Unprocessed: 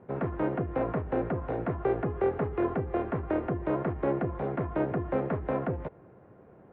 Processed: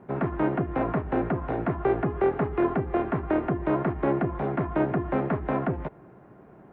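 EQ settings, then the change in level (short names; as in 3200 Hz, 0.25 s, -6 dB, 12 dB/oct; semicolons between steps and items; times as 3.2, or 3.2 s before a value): bell 91 Hz -9 dB 0.48 oct; bell 500 Hz -9 dB 0.3 oct; +5.5 dB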